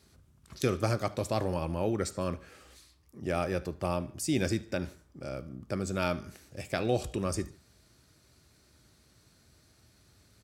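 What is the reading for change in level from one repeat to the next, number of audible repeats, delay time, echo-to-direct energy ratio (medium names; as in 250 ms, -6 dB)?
-6.0 dB, 2, 74 ms, -20.5 dB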